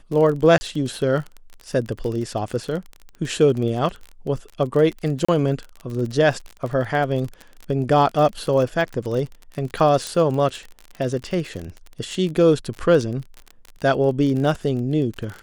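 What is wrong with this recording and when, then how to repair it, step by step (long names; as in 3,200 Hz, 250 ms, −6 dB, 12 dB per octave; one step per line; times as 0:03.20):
surface crackle 33 per second −27 dBFS
0:00.58–0:00.61: drop-out 30 ms
0:05.25–0:05.29: drop-out 35 ms
0:10.07: click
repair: click removal
repair the gap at 0:00.58, 30 ms
repair the gap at 0:05.25, 35 ms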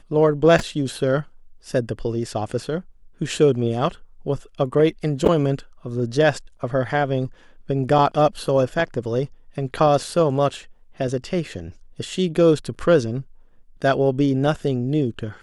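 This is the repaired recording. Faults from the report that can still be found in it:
0:10.07: click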